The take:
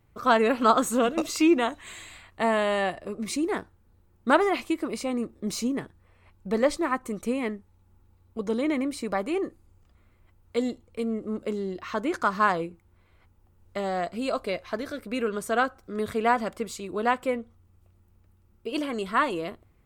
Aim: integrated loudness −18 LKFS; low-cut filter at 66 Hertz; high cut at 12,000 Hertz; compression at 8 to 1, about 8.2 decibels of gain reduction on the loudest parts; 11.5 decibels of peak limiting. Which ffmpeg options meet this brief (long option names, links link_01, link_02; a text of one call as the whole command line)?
ffmpeg -i in.wav -af "highpass=66,lowpass=12000,acompressor=threshold=-24dB:ratio=8,volume=17.5dB,alimiter=limit=-8.5dB:level=0:latency=1" out.wav